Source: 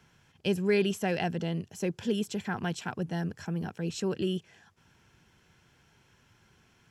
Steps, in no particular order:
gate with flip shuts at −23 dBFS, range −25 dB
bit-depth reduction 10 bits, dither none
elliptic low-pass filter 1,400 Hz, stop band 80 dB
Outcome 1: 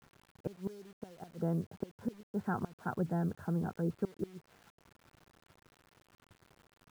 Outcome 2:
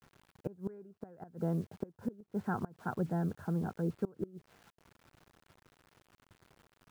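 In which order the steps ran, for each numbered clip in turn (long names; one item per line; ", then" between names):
elliptic low-pass filter, then gate with flip, then bit-depth reduction
elliptic low-pass filter, then bit-depth reduction, then gate with flip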